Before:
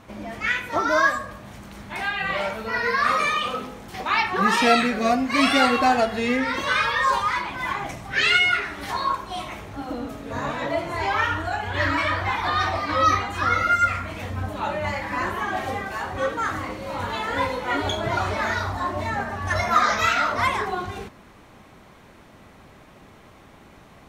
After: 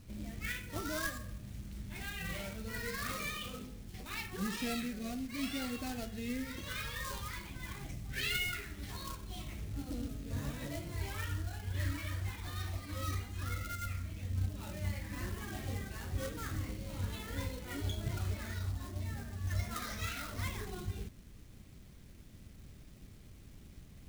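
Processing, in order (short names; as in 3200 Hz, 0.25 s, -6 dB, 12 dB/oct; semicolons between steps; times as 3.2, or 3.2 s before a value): companded quantiser 4-bit; passive tone stack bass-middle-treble 10-0-1; vocal rider within 4 dB 2 s; gain +5.5 dB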